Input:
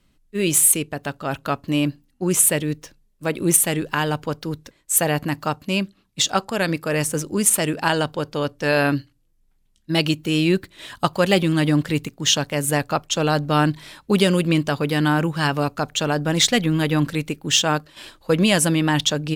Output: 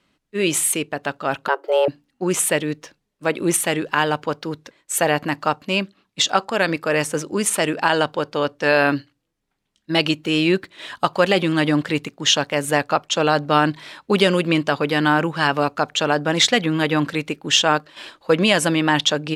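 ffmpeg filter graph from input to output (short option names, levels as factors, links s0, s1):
-filter_complex "[0:a]asettb=1/sr,asplit=3[s0][s1][s2];[s0]atrim=end=1.484[s3];[s1]atrim=start=1.48:end=1.88,asetpts=PTS-STARTPTS,afade=t=in:d=0.004:c=qsin,afade=t=out:st=0.396:d=0.004:c=qsin,equalizer=f=4200:w=0.38:g=-7,afreqshift=270[s4];[s2]atrim=start=1.876[s5];[s3][s4]acrossfade=d=0.004:c1=hsin:c2=qsin[s6];[s6][s5]acrossfade=d=0.004:c1=qsin:c2=hsin,highpass=f=470:p=1,aemphasis=mode=reproduction:type=50fm,alimiter=level_in=2.37:limit=0.891:release=50:level=0:latency=1,volume=0.794"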